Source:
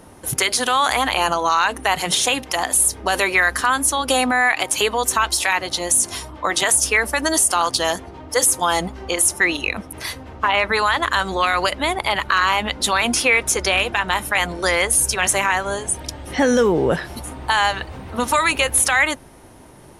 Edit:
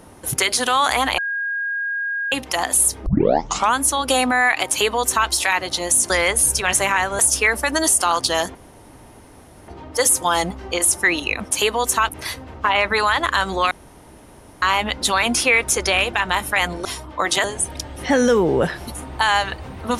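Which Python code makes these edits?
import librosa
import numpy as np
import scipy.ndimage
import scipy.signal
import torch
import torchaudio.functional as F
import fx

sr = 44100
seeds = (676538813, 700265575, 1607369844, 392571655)

y = fx.edit(x, sr, fx.bleep(start_s=1.18, length_s=1.14, hz=1630.0, db=-21.0),
    fx.tape_start(start_s=3.06, length_s=0.71),
    fx.duplicate(start_s=4.7, length_s=0.58, to_s=9.88),
    fx.swap(start_s=6.1, length_s=0.59, other_s=14.64, other_length_s=1.09),
    fx.insert_room_tone(at_s=8.05, length_s=1.13),
    fx.room_tone_fill(start_s=11.5, length_s=0.91), tone=tone)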